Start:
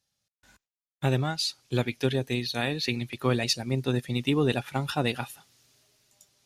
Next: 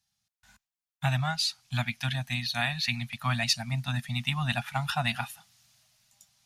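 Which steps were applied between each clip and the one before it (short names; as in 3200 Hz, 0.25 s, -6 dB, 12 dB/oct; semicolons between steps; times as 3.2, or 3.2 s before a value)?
dynamic EQ 1700 Hz, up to +4 dB, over -42 dBFS, Q 0.9; elliptic band-stop 220–680 Hz, stop band 40 dB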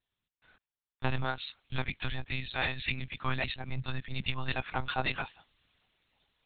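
monotone LPC vocoder at 8 kHz 130 Hz; gain -2.5 dB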